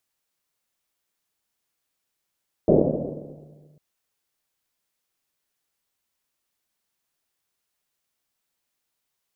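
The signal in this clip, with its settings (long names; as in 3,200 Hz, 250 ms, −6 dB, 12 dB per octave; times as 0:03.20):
drum after Risset, pitch 150 Hz, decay 2.57 s, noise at 390 Hz, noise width 450 Hz, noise 80%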